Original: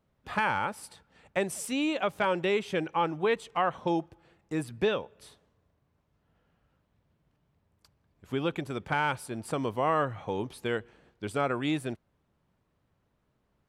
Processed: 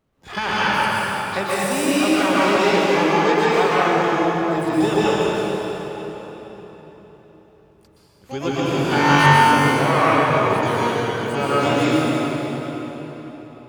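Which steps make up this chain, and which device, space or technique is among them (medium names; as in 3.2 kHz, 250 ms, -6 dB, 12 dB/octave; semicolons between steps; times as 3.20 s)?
8.60–9.26 s: flutter echo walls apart 3.6 m, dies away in 1.1 s; shimmer-style reverb (harmony voices +12 st -7 dB; reverberation RT60 4.3 s, pre-delay 116 ms, DRR -8.5 dB); trim +2 dB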